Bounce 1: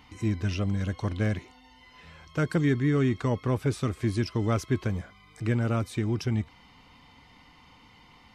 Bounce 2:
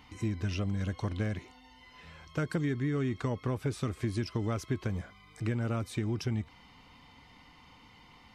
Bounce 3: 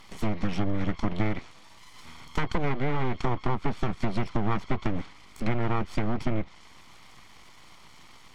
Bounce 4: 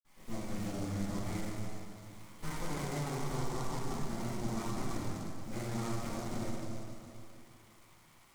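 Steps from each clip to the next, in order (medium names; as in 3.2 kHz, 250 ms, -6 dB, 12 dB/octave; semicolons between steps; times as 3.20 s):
compression, threshold -26 dBFS, peak gain reduction 6.5 dB; trim -1.5 dB
comb filter that takes the minimum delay 0.9 ms; full-wave rectifier; low-pass that closes with the level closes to 2.8 kHz, closed at -27.5 dBFS; trim +8 dB
reverberation RT60 2.8 s, pre-delay 46 ms; delay time shaken by noise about 5.5 kHz, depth 0.059 ms; trim +10.5 dB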